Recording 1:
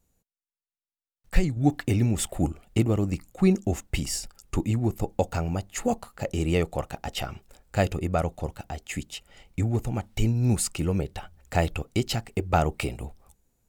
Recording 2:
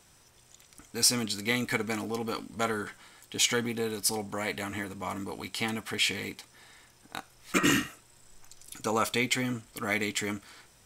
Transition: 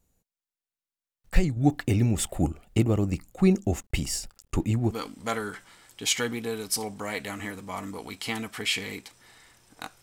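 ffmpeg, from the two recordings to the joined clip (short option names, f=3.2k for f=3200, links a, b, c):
-filter_complex "[0:a]asettb=1/sr,asplit=3[a][b][c];[a]atrim=end=3.824[d];[b]atrim=start=3.82:end=4.95,asetpts=PTS-STARTPTS,afade=t=in:d=0.004:c=qsin,afade=t=out:st=1.126:d=0.004:c=qsin,aeval=exprs='sgn(val(0))*max(abs(val(0))-0.00126,0)':c=same[e];[c]atrim=start=4.946[f];[d][e]acrossfade=d=0.004:c1=hsin:c2=qsin[g];[g][f]acrossfade=d=0.004:c1=qsin:c2=hsin,apad=whole_dur=10.02,atrim=end=10.02,atrim=end=4.95,asetpts=PTS-STARTPTS[h];[1:a]atrim=start=2.2:end=7.35,asetpts=PTS-STARTPTS[i];[h][i]acrossfade=d=0.08:c1=tri:c2=tri"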